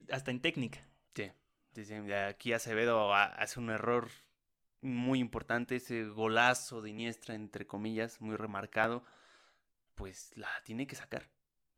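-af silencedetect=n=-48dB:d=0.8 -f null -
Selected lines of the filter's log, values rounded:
silence_start: 8.99
silence_end: 9.98 | silence_duration: 0.99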